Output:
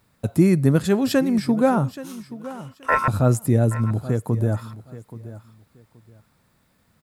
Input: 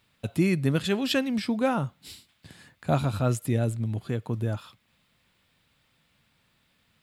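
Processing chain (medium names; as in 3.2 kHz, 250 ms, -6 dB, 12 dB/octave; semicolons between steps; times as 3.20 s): peaking EQ 3 kHz -14 dB 1.2 oct; 2.01–3.08 s: ring modulator 1.2 kHz; feedback delay 827 ms, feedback 21%, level -16 dB; trim +7.5 dB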